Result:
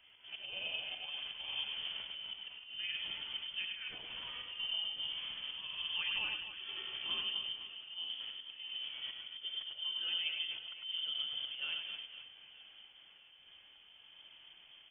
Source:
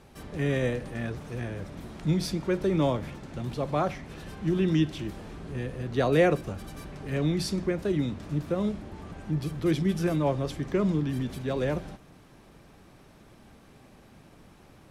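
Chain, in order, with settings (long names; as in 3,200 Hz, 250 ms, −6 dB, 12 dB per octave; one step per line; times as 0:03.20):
pitch glide at a constant tempo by +7 semitones ending unshifted
high-pass filter 97 Hz 24 dB per octave
low-shelf EQ 240 Hz +5 dB
hum removal 123.1 Hz, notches 2
downward compressor 16 to 1, threshold −34 dBFS, peak gain reduction 18.5 dB
volume swells 193 ms
voice inversion scrambler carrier 3,300 Hz
on a send: reverse bouncing-ball delay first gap 100 ms, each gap 1.6×, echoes 5
on the sum: multiband upward and downward expander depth 40%
level −3 dB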